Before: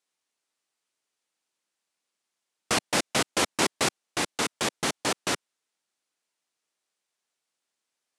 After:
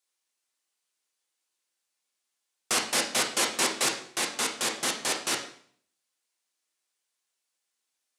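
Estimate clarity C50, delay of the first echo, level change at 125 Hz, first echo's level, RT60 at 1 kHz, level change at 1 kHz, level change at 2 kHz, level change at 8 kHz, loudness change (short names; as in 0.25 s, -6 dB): 8.0 dB, none, -10.5 dB, none, 0.55 s, -2.5 dB, -0.5 dB, +2.5 dB, +0.5 dB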